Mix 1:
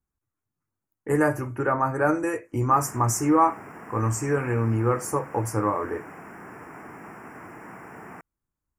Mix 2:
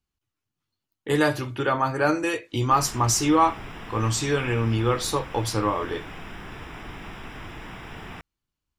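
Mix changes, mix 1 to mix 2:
background: remove high-pass filter 190 Hz 12 dB per octave
master: remove Butterworth band-reject 3,700 Hz, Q 0.69

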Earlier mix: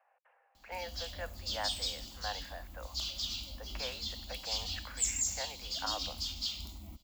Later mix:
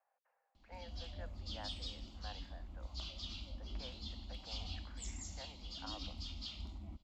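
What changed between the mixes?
speech −9.5 dB
master: add head-to-tape spacing loss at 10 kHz 26 dB

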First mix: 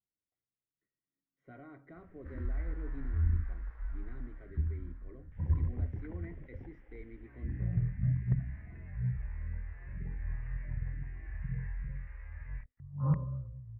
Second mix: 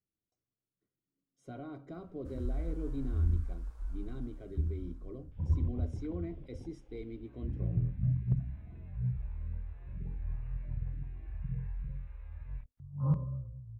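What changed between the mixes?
speech +8.0 dB
master: remove low-pass with resonance 1,900 Hz, resonance Q 7.9

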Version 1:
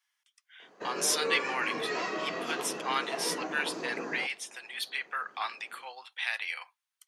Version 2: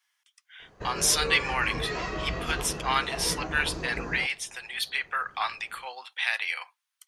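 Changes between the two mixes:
speech +5.0 dB
master: remove high-pass filter 230 Hz 24 dB per octave

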